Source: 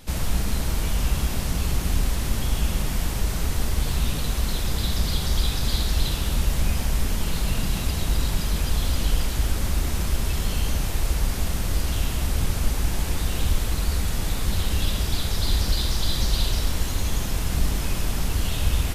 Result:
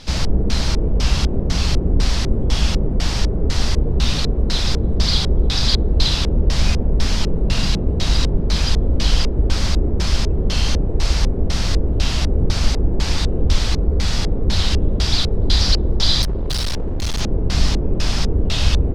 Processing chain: LFO low-pass square 2 Hz 430–5000 Hz; 16.22–17.21 hard clip -23.5 dBFS, distortion -18 dB; gain +6 dB

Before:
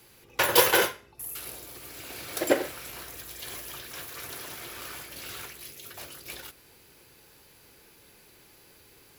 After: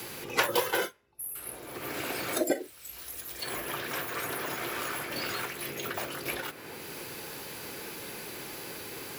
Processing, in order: spectral noise reduction 17 dB; three-band squash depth 100%; gain +4 dB

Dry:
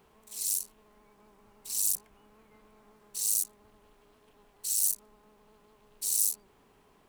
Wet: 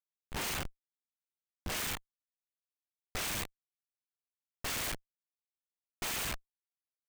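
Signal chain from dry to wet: FFT order left unsorted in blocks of 32 samples; Schmitt trigger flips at -34 dBFS

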